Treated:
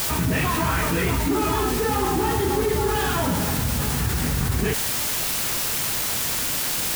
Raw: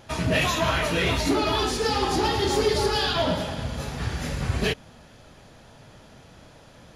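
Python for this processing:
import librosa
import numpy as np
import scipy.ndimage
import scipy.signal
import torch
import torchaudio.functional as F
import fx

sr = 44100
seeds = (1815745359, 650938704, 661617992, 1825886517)

y = scipy.signal.sosfilt(scipy.signal.bessel(4, 1700.0, 'lowpass', norm='mag', fs=sr, output='sos'), x)
y = fx.peak_eq(y, sr, hz=600.0, db=-12.0, octaves=0.41)
y = fx.quant_dither(y, sr, seeds[0], bits=6, dither='triangular')
y = fx.env_flatten(y, sr, amount_pct=70)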